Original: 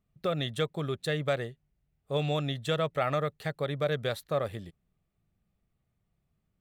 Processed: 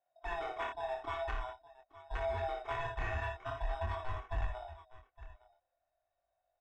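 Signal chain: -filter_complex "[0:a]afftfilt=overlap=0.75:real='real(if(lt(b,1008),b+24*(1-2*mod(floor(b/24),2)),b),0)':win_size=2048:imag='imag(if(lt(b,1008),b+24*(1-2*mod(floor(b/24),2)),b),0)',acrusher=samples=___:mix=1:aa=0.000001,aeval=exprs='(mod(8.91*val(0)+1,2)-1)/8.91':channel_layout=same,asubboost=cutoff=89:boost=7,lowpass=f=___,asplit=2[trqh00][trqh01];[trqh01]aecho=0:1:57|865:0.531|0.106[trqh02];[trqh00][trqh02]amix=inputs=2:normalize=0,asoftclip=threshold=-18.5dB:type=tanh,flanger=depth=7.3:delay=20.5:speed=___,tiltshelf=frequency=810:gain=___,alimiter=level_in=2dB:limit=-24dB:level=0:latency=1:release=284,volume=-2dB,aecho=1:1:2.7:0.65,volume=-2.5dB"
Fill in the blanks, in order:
10, 1200, 0.47, -10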